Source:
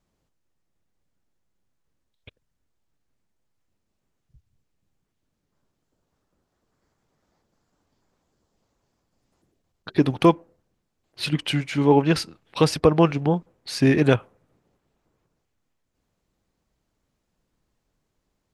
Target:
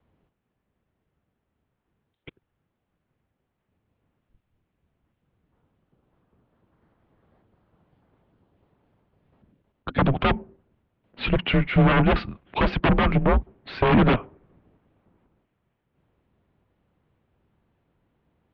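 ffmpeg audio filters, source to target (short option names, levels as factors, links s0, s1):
-af "aeval=exprs='0.1*(abs(mod(val(0)/0.1+3,4)-2)-1)':c=same,highshelf=f=2100:g=-7.5,highpass=f=200:t=q:w=0.5412,highpass=f=200:t=q:w=1.307,lowpass=f=3500:t=q:w=0.5176,lowpass=f=3500:t=q:w=0.7071,lowpass=f=3500:t=q:w=1.932,afreqshift=-120,lowshelf=f=190:g=7,volume=2.51"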